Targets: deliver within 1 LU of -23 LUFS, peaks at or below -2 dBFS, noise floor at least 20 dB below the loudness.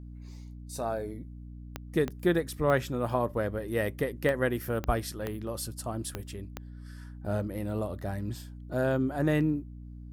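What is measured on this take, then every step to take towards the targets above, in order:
clicks 8; hum 60 Hz; harmonics up to 300 Hz; hum level -41 dBFS; loudness -31.0 LUFS; peak -12.5 dBFS; loudness target -23.0 LUFS
-> de-click; notches 60/120/180/240/300 Hz; gain +8 dB

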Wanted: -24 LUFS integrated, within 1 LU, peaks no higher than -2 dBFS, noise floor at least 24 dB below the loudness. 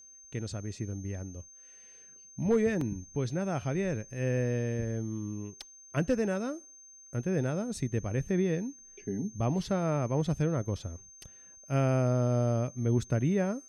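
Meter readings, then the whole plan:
dropouts 1; longest dropout 3.0 ms; steady tone 6300 Hz; tone level -51 dBFS; loudness -31.5 LUFS; peak -17.5 dBFS; loudness target -24.0 LUFS
-> interpolate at 2.81, 3 ms; notch 6300 Hz, Q 30; gain +7.5 dB

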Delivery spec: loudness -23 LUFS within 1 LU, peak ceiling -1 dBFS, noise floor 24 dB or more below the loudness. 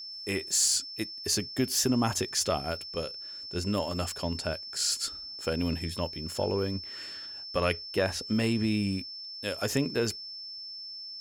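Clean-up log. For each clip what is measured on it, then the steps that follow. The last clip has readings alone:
steady tone 5300 Hz; tone level -39 dBFS; loudness -30.0 LUFS; peak -12.0 dBFS; loudness target -23.0 LUFS
-> notch 5300 Hz, Q 30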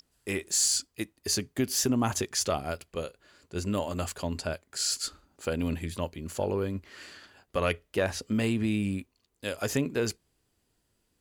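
steady tone none; loudness -30.5 LUFS; peak -12.5 dBFS; loudness target -23.0 LUFS
-> gain +7.5 dB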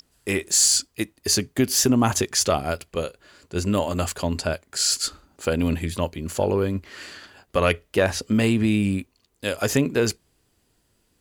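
loudness -23.0 LUFS; peak -5.0 dBFS; noise floor -68 dBFS

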